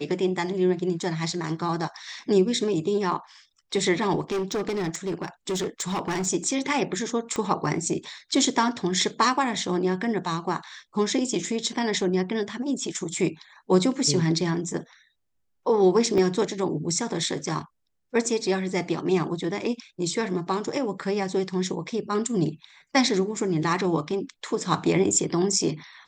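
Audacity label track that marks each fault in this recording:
4.200000	6.270000	clipped -23.5 dBFS
7.360000	7.360000	pop -16 dBFS
16.180000	16.180000	gap 3 ms

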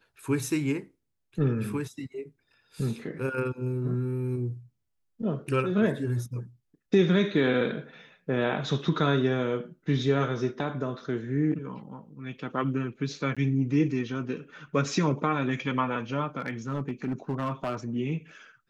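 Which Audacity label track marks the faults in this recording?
13.350000	13.370000	gap 16 ms
16.400000	17.750000	clipped -24.5 dBFS

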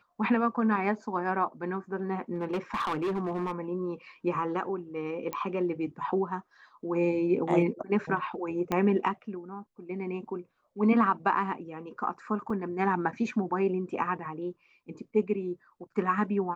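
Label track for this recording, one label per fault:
2.340000	3.520000	clipped -26.5 dBFS
5.330000	5.330000	pop -19 dBFS
8.720000	8.720000	pop -15 dBFS
12.500000	12.500000	gap 3.1 ms

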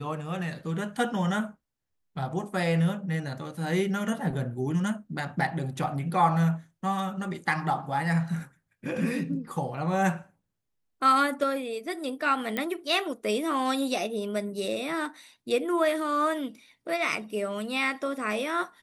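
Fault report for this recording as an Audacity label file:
12.570000	12.570000	pop -15 dBFS

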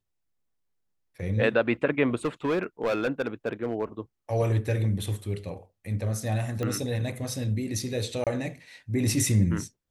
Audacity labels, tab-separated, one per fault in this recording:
2.250000	3.850000	clipped -21.5 dBFS
6.630000	6.630000	pop -19 dBFS
8.240000	8.270000	gap 27 ms

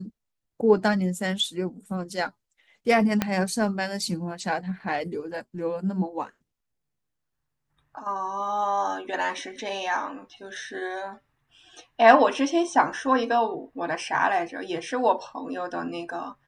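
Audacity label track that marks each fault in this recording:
3.220000	3.220000	pop -8 dBFS

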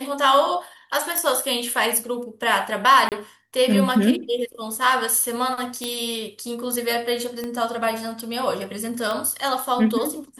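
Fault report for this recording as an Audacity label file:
1.180000	1.180000	pop -7 dBFS
3.090000	3.120000	gap 28 ms
5.840000	5.840000	pop -12 dBFS
7.440000	7.440000	pop -17 dBFS
9.110000	9.110000	pop

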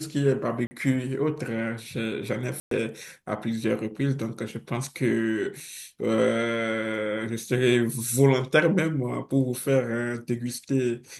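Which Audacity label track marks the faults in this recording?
0.670000	0.710000	gap 40 ms
2.600000	2.710000	gap 0.113 s
5.600000	5.600000	gap 3.4 ms

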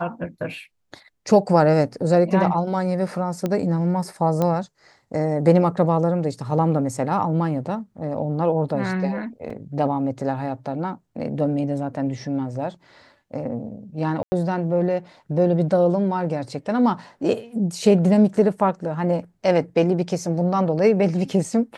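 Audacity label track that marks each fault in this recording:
3.460000	3.460000	pop -12 dBFS
4.420000	4.420000	pop -10 dBFS
9.500000	9.500000	gap 4.1 ms
14.230000	14.320000	gap 90 ms

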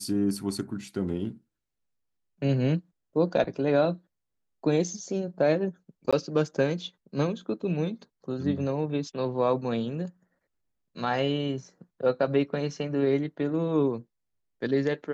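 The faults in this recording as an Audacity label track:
6.110000	6.130000	gap 16 ms

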